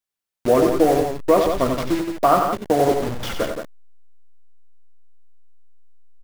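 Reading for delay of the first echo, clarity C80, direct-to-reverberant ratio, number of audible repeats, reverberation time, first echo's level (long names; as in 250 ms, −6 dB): 55 ms, no reverb audible, no reverb audible, 3, no reverb audible, −18.0 dB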